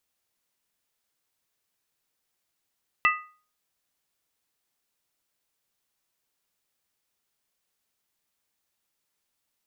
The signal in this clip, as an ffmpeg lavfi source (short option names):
-f lavfi -i "aevalsrc='0.126*pow(10,-3*t/0.41)*sin(2*PI*1240*t)+0.119*pow(10,-3*t/0.325)*sin(2*PI*1976.6*t)+0.112*pow(10,-3*t/0.281)*sin(2*PI*2648.6*t)':d=0.63:s=44100"